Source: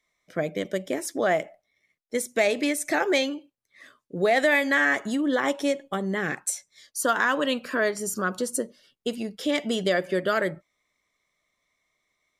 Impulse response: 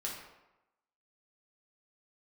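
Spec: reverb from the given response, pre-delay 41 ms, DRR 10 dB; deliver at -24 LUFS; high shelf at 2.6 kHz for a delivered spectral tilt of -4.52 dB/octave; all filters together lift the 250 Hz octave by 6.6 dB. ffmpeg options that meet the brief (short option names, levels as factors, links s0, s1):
-filter_complex "[0:a]equalizer=f=250:t=o:g=8,highshelf=f=2600:g=-6.5,asplit=2[s0][s1];[1:a]atrim=start_sample=2205,adelay=41[s2];[s1][s2]afir=irnorm=-1:irlink=0,volume=0.266[s3];[s0][s3]amix=inputs=2:normalize=0,volume=0.944"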